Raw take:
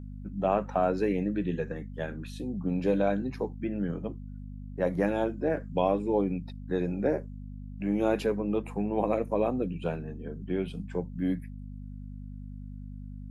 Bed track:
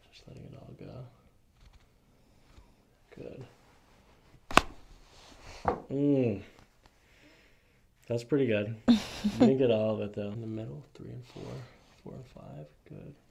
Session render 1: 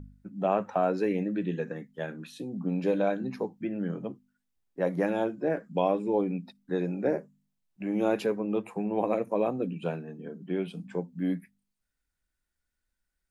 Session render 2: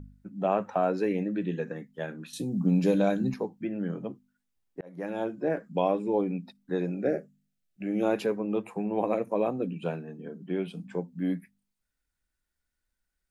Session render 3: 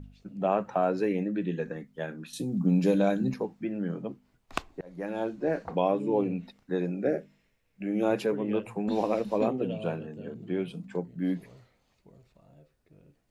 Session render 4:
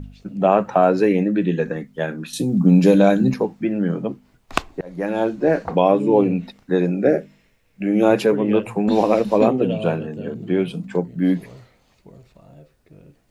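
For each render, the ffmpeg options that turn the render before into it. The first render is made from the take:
-af "bandreject=f=50:t=h:w=4,bandreject=f=100:t=h:w=4,bandreject=f=150:t=h:w=4,bandreject=f=200:t=h:w=4,bandreject=f=250:t=h:w=4"
-filter_complex "[0:a]asettb=1/sr,asplit=3[s0][s1][s2];[s0]atrim=end=2.334[s3];[s1]atrim=start=2.33:end=3.34,asetpts=PTS-STARTPTS,afade=t=in:d=0.004:c=qsin,afade=t=out:st=1.006:d=0.004:c=qsin,bass=f=250:g=10,treble=f=4000:g=13[s4];[s2]atrim=start=3.336[s5];[s3][s4]acrossfade=d=0.004:c1=hsin:c2=qsin[s6];[s6][s5]acrossfade=d=0.004:c1=qsin:c2=hsin,asettb=1/sr,asplit=3[s7][s8][s9];[s7]atrim=end=6.904[s10];[s8]atrim=start=6.9:end=8.03,asetpts=PTS-STARTPTS,afade=t=in:d=0.004:c=qsin,afade=t=out:st=1.126:d=0.004:c=qsin,asuperstop=centerf=970:order=4:qfactor=2[s11];[s9]atrim=start=8.026[s12];[s10][s11]acrossfade=d=0.004:c1=hsin:c2=qsin[s13];[s13][s12]acrossfade=d=0.004:c1=qsin:c2=hsin,asplit=2[s14][s15];[s14]atrim=end=4.81,asetpts=PTS-STARTPTS,afade=t=out:st=4.806:d=0.004:c=hsin[s16];[s15]atrim=start=4.81,asetpts=PTS-STARTPTS,afade=t=in:d=0.57[s17];[s16][s17]concat=n=2:v=0:a=1"
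-filter_complex "[1:a]volume=0.282[s0];[0:a][s0]amix=inputs=2:normalize=0"
-af "volume=3.55,alimiter=limit=0.708:level=0:latency=1"

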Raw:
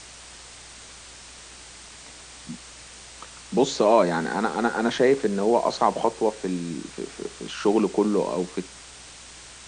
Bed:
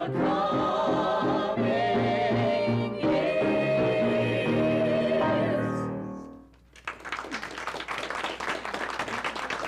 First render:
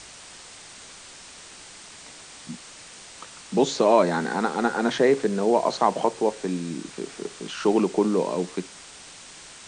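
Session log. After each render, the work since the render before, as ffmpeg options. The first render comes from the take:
-af "bandreject=f=60:t=h:w=4,bandreject=f=120:t=h:w=4"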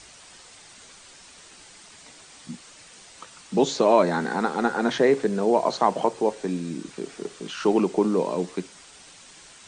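-af "afftdn=nr=6:nf=-45"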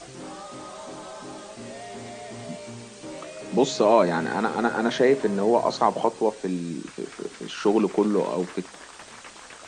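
-filter_complex "[1:a]volume=0.2[s0];[0:a][s0]amix=inputs=2:normalize=0"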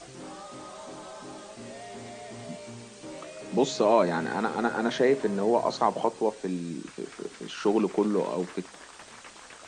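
-af "volume=0.668"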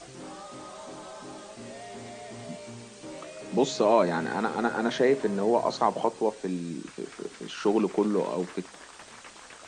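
-af anull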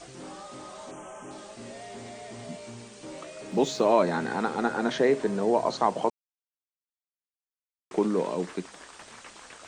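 -filter_complex "[0:a]asettb=1/sr,asplit=3[s0][s1][s2];[s0]atrim=end=0.914[s3];[s1]atrim=start=0.91:end=1.31,asetpts=PTS-STARTPTS,afade=t=in:d=0.004:c=qsin,afade=t=out:st=0.396:d=0.004:c=qsin,asuperstop=centerf=4300:order=8:qfactor=1.6[s4];[s2]atrim=start=1.306[s5];[s3][s4]acrossfade=d=0.004:c1=hsin:c2=qsin[s6];[s6][s5]acrossfade=d=0.004:c1=qsin:c2=hsin,asplit=3[s7][s8][s9];[s7]afade=t=out:st=3.5:d=0.02[s10];[s8]aeval=exprs='sgn(val(0))*max(abs(val(0))-0.00188,0)':c=same,afade=t=in:st=3.5:d=0.02,afade=t=out:st=3.96:d=0.02[s11];[s9]afade=t=in:st=3.96:d=0.02[s12];[s10][s11][s12]amix=inputs=3:normalize=0,asplit=3[s13][s14][s15];[s13]atrim=end=6.1,asetpts=PTS-STARTPTS,afade=t=out:st=6.096:d=0.004:c=hsin[s16];[s14]atrim=start=6.1:end=7.91,asetpts=PTS-STARTPTS,volume=0[s17];[s15]atrim=start=7.91,asetpts=PTS-STARTPTS,afade=t=in:d=0.004:c=hsin[s18];[s16][s17][s18]concat=n=3:v=0:a=1"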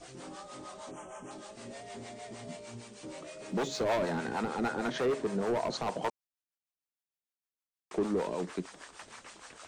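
-filter_complex "[0:a]asoftclip=type=hard:threshold=0.075,acrossover=split=530[s0][s1];[s0]aeval=exprs='val(0)*(1-0.7/2+0.7/2*cos(2*PI*6.5*n/s))':c=same[s2];[s1]aeval=exprs='val(0)*(1-0.7/2-0.7/2*cos(2*PI*6.5*n/s))':c=same[s3];[s2][s3]amix=inputs=2:normalize=0"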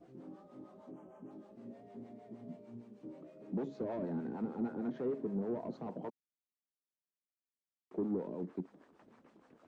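-af "bandpass=f=240:t=q:w=1.5:csg=0,asoftclip=type=tanh:threshold=0.0501"

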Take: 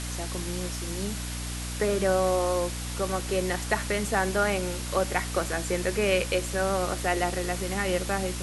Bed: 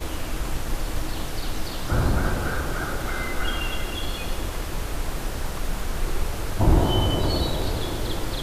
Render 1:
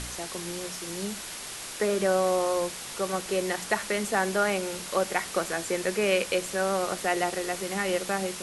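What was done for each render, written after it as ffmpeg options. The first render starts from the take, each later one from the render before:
-af "bandreject=f=60:t=h:w=4,bandreject=f=120:t=h:w=4,bandreject=f=180:t=h:w=4,bandreject=f=240:t=h:w=4,bandreject=f=300:t=h:w=4"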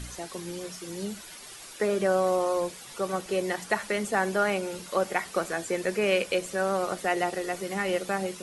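-af "afftdn=nr=10:nf=-39"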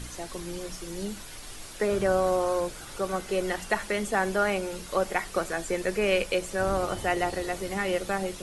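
-filter_complex "[1:a]volume=0.119[s0];[0:a][s0]amix=inputs=2:normalize=0"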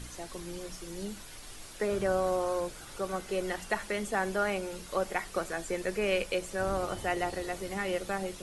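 -af "volume=0.596"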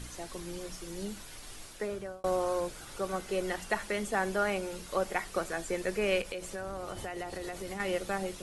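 -filter_complex "[0:a]asettb=1/sr,asplit=3[s0][s1][s2];[s0]atrim=end=6.214[s3];[s1]atrim=start=6.21:end=7.8,asetpts=PTS-STARTPTS,afade=t=in:d=0.004:c=qsin,afade=t=out:st=1.586:d=0.004:c=qsin,acompressor=threshold=0.02:ratio=6:attack=3.2:release=140:knee=1:detection=peak[s4];[s2]atrim=start=7.796[s5];[s3][s4]acrossfade=d=0.004:c1=hsin:c2=qsin[s6];[s6][s5]acrossfade=d=0.004:c1=qsin:c2=hsin,asplit=2[s7][s8];[s7]atrim=end=2.24,asetpts=PTS-STARTPTS,afade=t=out:st=1.59:d=0.65[s9];[s8]atrim=start=2.24,asetpts=PTS-STARTPTS,afade=t=in:d=0.004:c=hsin[s10];[s9][s10]concat=n=2:v=0:a=1"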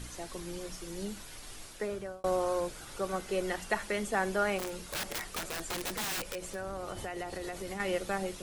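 -filter_complex "[0:a]asplit=3[s0][s1][s2];[s0]afade=t=out:st=4.58:d=0.02[s3];[s1]aeval=exprs='(mod(31.6*val(0)+1,2)-1)/31.6':c=same,afade=t=in:st=4.58:d=0.02,afade=t=out:st=6.53:d=0.02[s4];[s2]afade=t=in:st=6.53:d=0.02[s5];[s3][s4][s5]amix=inputs=3:normalize=0"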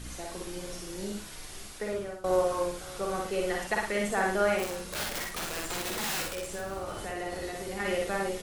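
-filter_complex "[0:a]asplit=2[s0][s1];[s1]adelay=49,volume=0.596[s2];[s0][s2]amix=inputs=2:normalize=0,aecho=1:1:62|568:0.708|0.106"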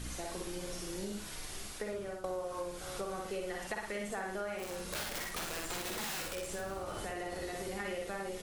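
-af "acompressor=threshold=0.0158:ratio=6"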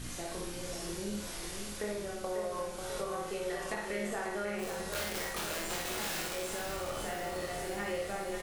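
-filter_complex "[0:a]asplit=2[s0][s1];[s1]adelay=24,volume=0.631[s2];[s0][s2]amix=inputs=2:normalize=0,asplit=2[s3][s4];[s4]aecho=0:1:542|1084|1626|2168|2710|3252|3794:0.447|0.255|0.145|0.0827|0.0472|0.0269|0.0153[s5];[s3][s5]amix=inputs=2:normalize=0"

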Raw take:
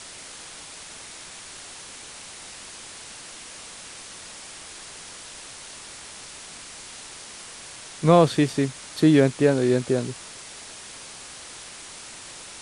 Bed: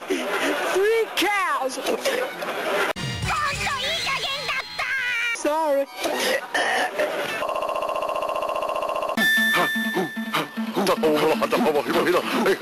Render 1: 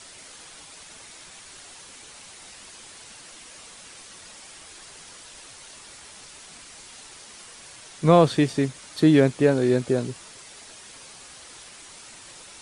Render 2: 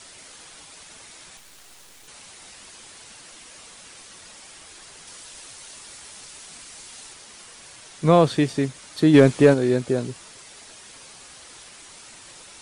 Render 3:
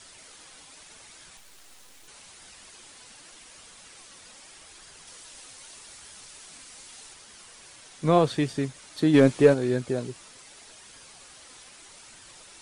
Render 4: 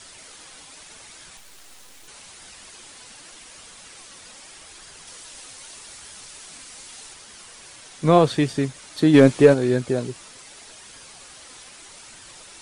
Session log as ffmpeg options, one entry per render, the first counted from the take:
-af "afftdn=nr=6:nf=-42"
-filter_complex "[0:a]asettb=1/sr,asplit=3[s0][s1][s2];[s0]atrim=end=1.374[s3];[s1]atrim=start=1.37:end=2.08,asetpts=PTS-STARTPTS,afade=t=in:d=0.004:c=qsin,afade=t=out:st=0.706:d=0.004:c=qsin,acrusher=bits=6:dc=4:mix=0:aa=0.000001[s4];[s2]atrim=start=2.076[s5];[s3][s4]acrossfade=d=0.004:c1=hsin:c2=qsin[s6];[s6][s5]acrossfade=d=0.004:c1=qsin:c2=hsin,asettb=1/sr,asplit=3[s7][s8][s9];[s7]atrim=end=5.074[s10];[s8]atrim=start=5.07:end=7.13,asetpts=PTS-STARTPTS,afade=t=in:d=0.004:c=qsin,afade=t=out:st=2.056:d=0.004:c=qsin,highshelf=f=4500:g=4.5[s11];[s9]atrim=start=7.126[s12];[s10][s11]acrossfade=d=0.004:c1=hsin:c2=qsin[s13];[s13][s12]acrossfade=d=0.004:c1=qsin:c2=hsin,asplit=3[s14][s15][s16];[s14]afade=t=out:st=9.13:d=0.02[s17];[s15]acontrast=40,afade=t=in:st=9.13:d=0.02,afade=t=out:st=9.53:d=0.02[s18];[s16]afade=t=in:st=9.53:d=0.02[s19];[s17][s18][s19]amix=inputs=3:normalize=0"
-af "flanger=delay=0.6:depth=3.4:regen=72:speed=0.82:shape=sinusoidal"
-af "volume=1.78,alimiter=limit=0.794:level=0:latency=1"

